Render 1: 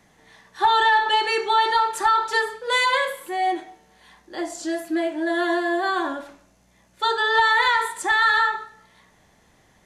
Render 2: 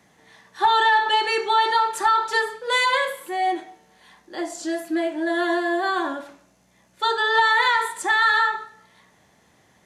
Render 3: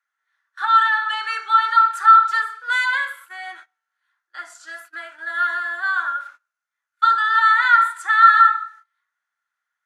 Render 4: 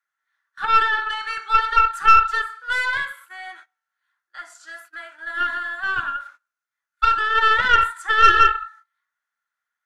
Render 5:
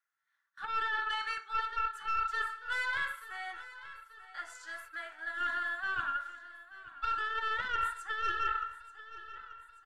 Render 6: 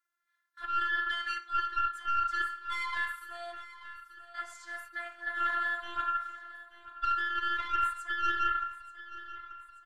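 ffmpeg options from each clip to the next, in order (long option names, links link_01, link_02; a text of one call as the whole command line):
ffmpeg -i in.wav -af "highpass=91" out.wav
ffmpeg -i in.wav -af "highpass=frequency=1400:width_type=q:width=12,agate=range=-21dB:threshold=-35dB:ratio=16:detection=peak,volume=-7dB" out.wav
ffmpeg -i in.wav -af "aeval=exprs='(tanh(2.24*val(0)+0.8)-tanh(0.8))/2.24':channel_layout=same,volume=2.5dB" out.wav
ffmpeg -i in.wav -af "areverse,acompressor=threshold=-25dB:ratio=6,areverse,aecho=1:1:884|1768|2652|3536|4420:0.158|0.0903|0.0515|0.0294|0.0167,volume=-5.5dB" out.wav
ffmpeg -i in.wav -af "afftfilt=real='hypot(re,im)*cos(PI*b)':imag='0':win_size=512:overlap=0.75,volume=4dB" out.wav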